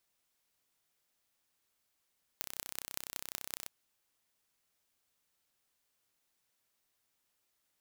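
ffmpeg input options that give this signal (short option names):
-f lavfi -i "aevalsrc='0.376*eq(mod(n,1382),0)*(0.5+0.5*eq(mod(n,8292),0))':d=1.27:s=44100"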